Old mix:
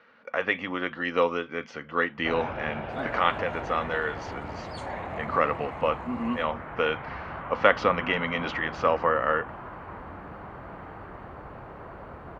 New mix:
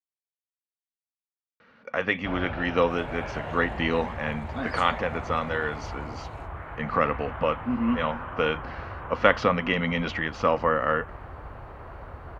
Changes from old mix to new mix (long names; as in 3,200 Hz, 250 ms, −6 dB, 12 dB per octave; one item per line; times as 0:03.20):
speech: entry +1.60 s
first sound: add parametric band 190 Hz −13 dB 1.3 octaves
master: add bass and treble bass +9 dB, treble +4 dB